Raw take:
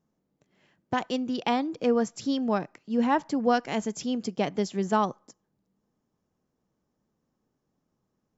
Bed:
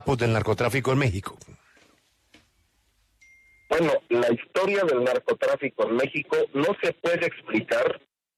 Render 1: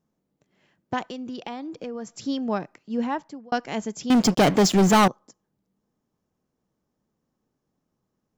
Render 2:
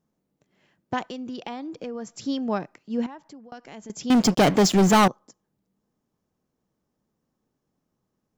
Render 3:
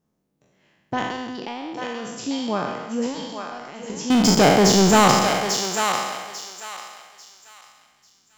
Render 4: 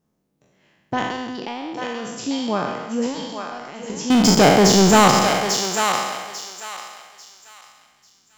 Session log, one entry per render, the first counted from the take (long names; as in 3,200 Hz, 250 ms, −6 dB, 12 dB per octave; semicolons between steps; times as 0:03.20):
0:01.02–0:02.16: downward compressor 5 to 1, threshold −31 dBFS; 0:02.91–0:03.52: fade out; 0:04.10–0:05.08: leveller curve on the samples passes 5
0:03.06–0:03.90: downward compressor 3 to 1, threshold −42 dBFS
peak hold with a decay on every bin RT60 1.27 s; feedback echo with a high-pass in the loop 844 ms, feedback 29%, high-pass 950 Hz, level −3.5 dB
level +2 dB; brickwall limiter −3 dBFS, peak gain reduction 3 dB